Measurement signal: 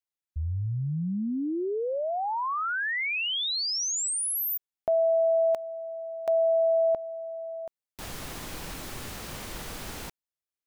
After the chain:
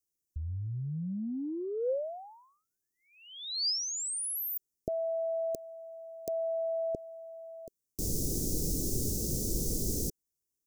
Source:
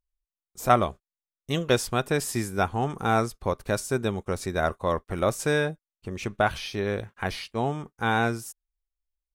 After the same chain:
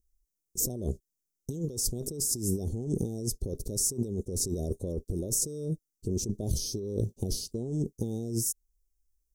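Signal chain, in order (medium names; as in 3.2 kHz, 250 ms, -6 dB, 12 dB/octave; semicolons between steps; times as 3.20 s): elliptic band-stop 420–5800 Hz, stop band 80 dB; compressor with a negative ratio -37 dBFS, ratio -1; trim +5 dB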